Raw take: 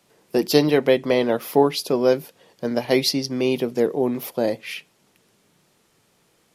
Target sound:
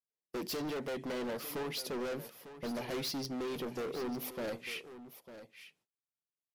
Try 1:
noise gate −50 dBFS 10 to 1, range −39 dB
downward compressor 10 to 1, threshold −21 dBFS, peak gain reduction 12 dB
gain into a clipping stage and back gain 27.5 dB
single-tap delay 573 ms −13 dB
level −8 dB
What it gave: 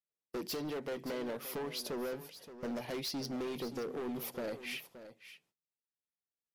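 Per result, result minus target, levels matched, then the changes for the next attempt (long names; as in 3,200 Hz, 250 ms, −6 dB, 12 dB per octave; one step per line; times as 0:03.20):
echo 327 ms early; downward compressor: peak gain reduction +6 dB
change: single-tap delay 900 ms −13 dB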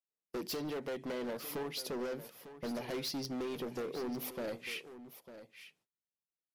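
downward compressor: peak gain reduction +6 dB
change: downward compressor 10 to 1, threshold −14.5 dBFS, peak gain reduction 6 dB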